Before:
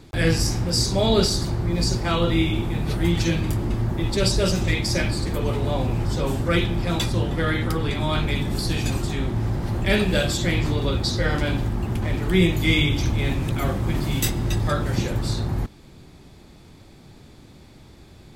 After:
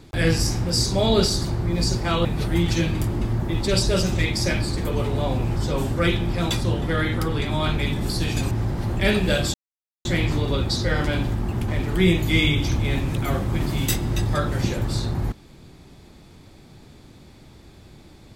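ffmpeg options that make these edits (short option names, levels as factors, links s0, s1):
-filter_complex "[0:a]asplit=4[s0][s1][s2][s3];[s0]atrim=end=2.252[s4];[s1]atrim=start=2.738:end=9.002[s5];[s2]atrim=start=9.358:end=10.39,asetpts=PTS-STARTPTS,afade=t=out:st=1.028:d=0.004:c=hsin,apad=pad_dur=0.51[s6];[s3]atrim=start=10.39,asetpts=PTS-STARTPTS,afade=t=in:d=0.004:c=hsin[s7];[s4][s5]acrossfade=d=0.004:c1=hsin:c2=hsin[s8];[s6][s7]concat=n=2:v=0:a=1[s9];[s8][s9]acrossfade=d=0.004:c1=hsin:c2=hsin"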